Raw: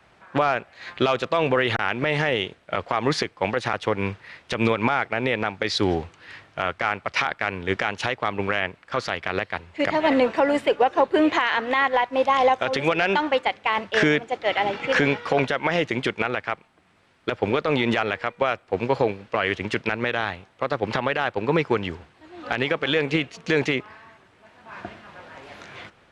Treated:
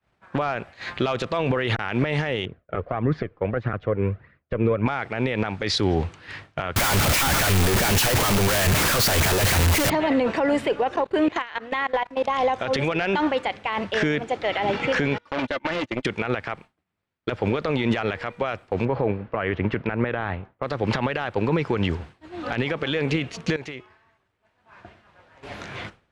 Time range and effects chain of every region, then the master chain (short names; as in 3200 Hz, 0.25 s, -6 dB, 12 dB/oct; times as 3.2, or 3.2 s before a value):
2.45–4.86 LPF 1200 Hz + bell 880 Hz -11.5 dB 0.43 oct + flange 1.6 Hz, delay 0.5 ms, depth 2 ms, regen +41%
6.76–9.9 infinite clipping + high shelf 6000 Hz +7 dB
10.96–12.37 bell 180 Hz -3 dB 1.7 oct + level quantiser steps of 22 dB
15.18–16.05 gate -26 dBFS, range -29 dB + comb 3.4 ms, depth 62% + core saturation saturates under 1800 Hz
18.85–20.63 LPF 1900 Hz + mismatched tape noise reduction decoder only
23.56–25.43 bell 200 Hz -6 dB 1.3 oct + de-hum 368.7 Hz, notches 35 + compressor 2:1, threshold -51 dBFS
whole clip: limiter -19.5 dBFS; low shelf 210 Hz +8 dB; expander -41 dBFS; gain +4.5 dB